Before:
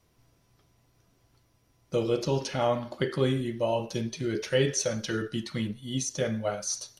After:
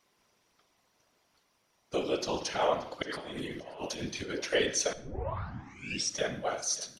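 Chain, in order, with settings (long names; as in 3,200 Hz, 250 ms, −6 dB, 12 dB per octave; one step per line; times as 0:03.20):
meter weighting curve A
0:03.02–0:04.30: compressor whose output falls as the input rises −41 dBFS, ratio −1
random phases in short frames
repeating echo 578 ms, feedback 40%, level −20 dB
0:04.93: tape start 1.22 s
convolution reverb RT60 0.60 s, pre-delay 59 ms, DRR 16 dB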